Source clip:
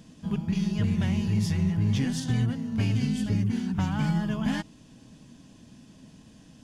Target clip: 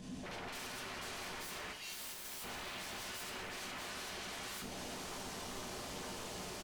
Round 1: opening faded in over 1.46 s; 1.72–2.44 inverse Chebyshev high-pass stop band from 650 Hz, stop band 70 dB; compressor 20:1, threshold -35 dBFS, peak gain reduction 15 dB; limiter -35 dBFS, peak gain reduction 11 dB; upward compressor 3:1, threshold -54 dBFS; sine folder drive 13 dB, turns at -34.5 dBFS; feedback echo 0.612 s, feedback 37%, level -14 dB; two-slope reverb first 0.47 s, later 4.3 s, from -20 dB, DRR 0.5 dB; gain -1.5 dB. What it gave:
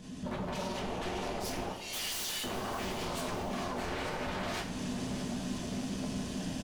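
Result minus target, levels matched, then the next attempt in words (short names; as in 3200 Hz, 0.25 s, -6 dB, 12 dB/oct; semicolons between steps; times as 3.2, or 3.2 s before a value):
sine folder: distortion -9 dB
opening faded in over 1.46 s; 1.72–2.44 inverse Chebyshev high-pass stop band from 650 Hz, stop band 70 dB; compressor 20:1, threshold -35 dBFS, peak gain reduction 15 dB; limiter -35 dBFS, peak gain reduction 11 dB; upward compressor 3:1, threshold -54 dBFS; sine folder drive 13 dB, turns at -43.5 dBFS; feedback echo 0.612 s, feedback 37%, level -14 dB; two-slope reverb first 0.47 s, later 4.3 s, from -20 dB, DRR 0.5 dB; gain -1.5 dB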